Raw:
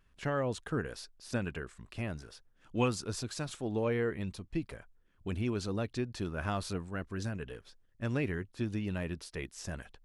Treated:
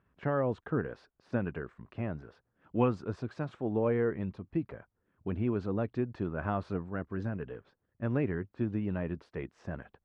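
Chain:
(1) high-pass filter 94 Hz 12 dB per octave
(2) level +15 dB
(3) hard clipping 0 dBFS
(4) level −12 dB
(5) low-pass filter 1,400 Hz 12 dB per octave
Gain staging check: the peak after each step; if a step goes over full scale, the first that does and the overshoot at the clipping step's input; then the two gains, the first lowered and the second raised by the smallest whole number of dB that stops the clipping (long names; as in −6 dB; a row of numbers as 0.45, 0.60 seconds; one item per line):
−17.0, −2.0, −2.0, −14.0, −15.0 dBFS
no step passes full scale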